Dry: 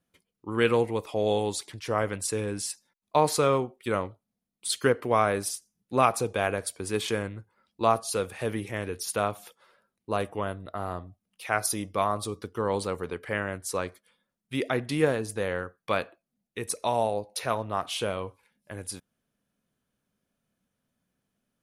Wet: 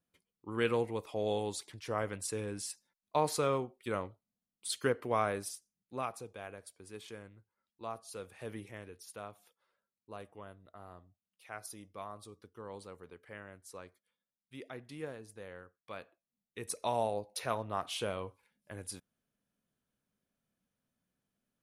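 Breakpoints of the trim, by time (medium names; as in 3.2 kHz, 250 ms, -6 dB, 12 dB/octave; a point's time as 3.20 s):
5.26 s -8 dB
6.34 s -19 dB
7.89 s -19 dB
8.59 s -12 dB
9.02 s -18.5 dB
15.93 s -18.5 dB
16.78 s -6.5 dB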